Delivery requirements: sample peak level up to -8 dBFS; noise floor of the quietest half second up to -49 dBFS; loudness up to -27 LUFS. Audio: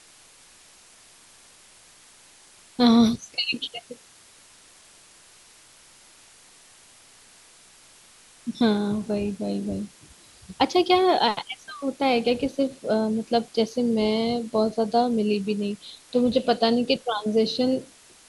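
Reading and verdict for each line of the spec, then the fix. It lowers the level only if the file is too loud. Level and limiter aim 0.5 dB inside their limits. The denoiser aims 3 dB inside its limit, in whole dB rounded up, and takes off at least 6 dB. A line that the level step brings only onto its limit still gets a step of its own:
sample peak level -6.0 dBFS: fail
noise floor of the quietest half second -53 dBFS: pass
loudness -24.0 LUFS: fail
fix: trim -3.5 dB

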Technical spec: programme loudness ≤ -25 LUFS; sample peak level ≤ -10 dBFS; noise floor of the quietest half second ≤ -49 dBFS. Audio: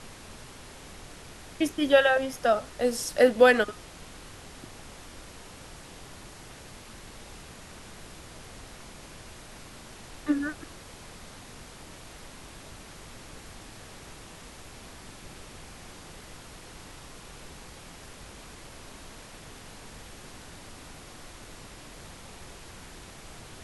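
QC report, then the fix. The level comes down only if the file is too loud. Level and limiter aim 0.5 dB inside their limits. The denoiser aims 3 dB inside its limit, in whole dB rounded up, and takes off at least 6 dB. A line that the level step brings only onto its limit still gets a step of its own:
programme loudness -24.0 LUFS: fail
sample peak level -6.0 dBFS: fail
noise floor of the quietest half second -46 dBFS: fail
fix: noise reduction 6 dB, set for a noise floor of -46 dBFS; trim -1.5 dB; peak limiter -10.5 dBFS

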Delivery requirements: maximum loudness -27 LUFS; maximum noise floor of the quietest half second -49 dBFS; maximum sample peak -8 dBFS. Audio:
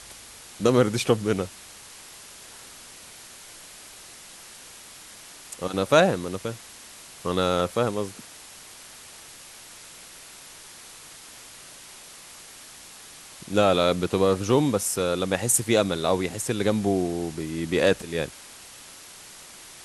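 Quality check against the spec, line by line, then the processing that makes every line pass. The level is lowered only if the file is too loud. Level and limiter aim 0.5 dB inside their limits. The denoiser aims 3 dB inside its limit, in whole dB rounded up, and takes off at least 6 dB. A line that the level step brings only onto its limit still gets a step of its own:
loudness -24.0 LUFS: fail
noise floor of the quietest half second -45 dBFS: fail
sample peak -5.0 dBFS: fail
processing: noise reduction 6 dB, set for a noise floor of -45 dBFS; trim -3.5 dB

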